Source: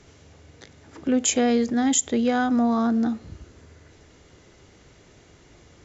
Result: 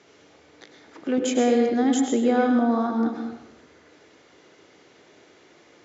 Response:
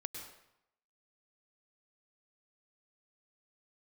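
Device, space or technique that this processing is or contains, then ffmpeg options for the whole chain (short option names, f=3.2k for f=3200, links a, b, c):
supermarket ceiling speaker: -filter_complex "[0:a]highpass=290,lowpass=5.2k[a];[1:a]atrim=start_sample=2205[b];[a][b]afir=irnorm=-1:irlink=0,asettb=1/sr,asplit=3[c][d][e];[c]atrim=end=1.184[f];[d]atrim=start=1.18:end=3.15,asetpts=PTS-STARTPTS,afade=t=in:d=0.004:c=qsin,afade=t=out:st=1.966:d=0.004:c=qsin,tiltshelf=f=700:g=5[g];[e]atrim=start=3.146[h];[f][g]acrossfade=d=0.004:c1=hsin:c2=qsin[i];[i][h]acrossfade=d=0.004:c1=qsin:c2=hsin,volume=3.5dB"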